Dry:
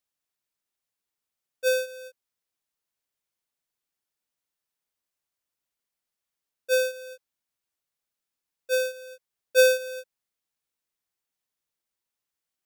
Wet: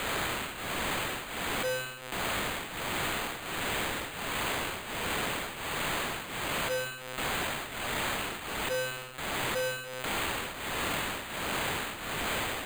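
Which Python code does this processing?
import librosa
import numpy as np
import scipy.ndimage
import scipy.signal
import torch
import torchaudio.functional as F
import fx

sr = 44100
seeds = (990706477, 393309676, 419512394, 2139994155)

p1 = x + 0.5 * 10.0 ** (-23.5 / 20.0) * np.diff(np.sign(x), prepend=np.sign(x[:1]))
p2 = fx.tremolo_shape(p1, sr, shape='triangle', hz=1.4, depth_pct=100)
p3 = np.clip(p2, -10.0 ** (-25.0 / 20.0), 10.0 ** (-25.0 / 20.0))
p4 = p3 + fx.echo_feedback(p3, sr, ms=67, feedback_pct=40, wet_db=-9.0, dry=0)
p5 = np.repeat(p4[::8], 8)[:len(p4)]
p6 = fx.env_flatten(p5, sr, amount_pct=50)
y = p6 * 10.0 ** (-5.0 / 20.0)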